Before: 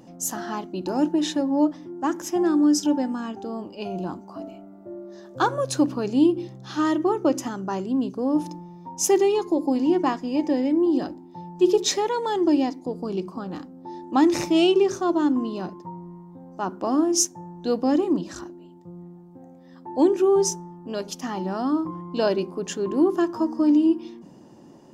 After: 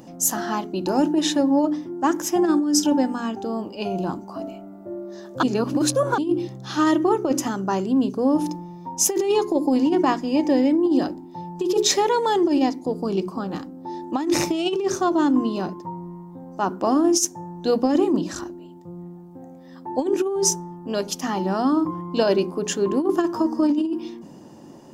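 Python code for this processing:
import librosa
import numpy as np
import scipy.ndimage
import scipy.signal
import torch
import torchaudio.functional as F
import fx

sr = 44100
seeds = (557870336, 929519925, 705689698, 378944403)

y = fx.edit(x, sr, fx.reverse_span(start_s=5.43, length_s=0.75), tone=tone)
y = fx.high_shelf(y, sr, hz=10000.0, db=6.0)
y = fx.hum_notches(y, sr, base_hz=60, count=7)
y = fx.over_compress(y, sr, threshold_db=-21.0, ratio=-0.5)
y = F.gain(torch.from_numpy(y), 3.5).numpy()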